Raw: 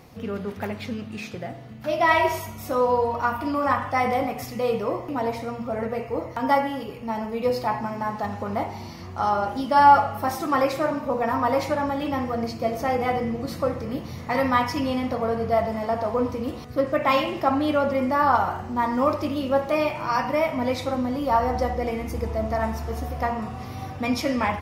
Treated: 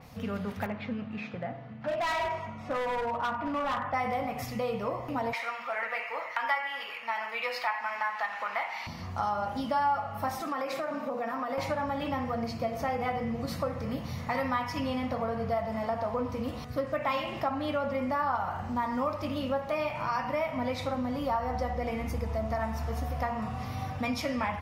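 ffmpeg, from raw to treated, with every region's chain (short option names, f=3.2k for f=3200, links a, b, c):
-filter_complex "[0:a]asettb=1/sr,asplit=3[a][b][c];[a]atrim=end=0.664[d];[b]atrim=start=0.66:end=3.94,asetpts=PTS-STARTPTS,afade=t=in:d=0.004:c=qsin,afade=t=out:st=3.276:d=0.004:c=qsin,highpass=130,lowpass=2.2k,volume=22.5dB,asoftclip=hard,volume=-22.5dB[e];[c]atrim=start=3.936[f];[d][e]acrossfade=d=0.004:c1=hsin:c2=qsin[g];[g][f]acrossfade=d=0.004:c1=qsin:c2=hsin,asettb=1/sr,asplit=3[h][i][j];[h]atrim=end=5.334[k];[i]atrim=start=5.33:end=8.87,asetpts=PTS-STARTPTS,afade=t=in:d=0.004:c=qsin,afade=t=out:st=3.536:d=0.004:c=qsin,highpass=850,equalizer=f=2.1k:w=0.84:g=12.5[l];[j]atrim=start=8.866[m];[k][l]acrossfade=d=0.004:c1=hsin:c2=qsin[n];[n][m]acrossfade=d=0.004:c1=qsin:c2=hsin,asettb=1/sr,asplit=3[o][p][q];[o]atrim=end=10.404[r];[p]atrim=start=10.4:end=11.58,asetpts=PTS-STARTPTS,afade=t=in:d=0.004:c=qsin,afade=t=out:st=1.176:d=0.004:c=qsin,highpass=f=200:w=0.5412,highpass=f=200:w=1.3066,acompressor=threshold=-25dB:ratio=6:attack=3.2:release=140:knee=1:detection=peak,bandreject=f=950:w=9.7[s];[q]atrim=start=11.576[t];[r][s]acrossfade=d=0.004:c1=hsin:c2=qsin[u];[u][t]acrossfade=d=0.004:c1=qsin:c2=hsin,equalizer=f=360:w=2.6:g=-11.5,acompressor=threshold=-29dB:ratio=3,adynamicequalizer=threshold=0.00316:dfrequency=4400:dqfactor=0.7:tfrequency=4400:tqfactor=0.7:attack=5:release=100:ratio=0.375:range=3:mode=cutabove:tftype=highshelf"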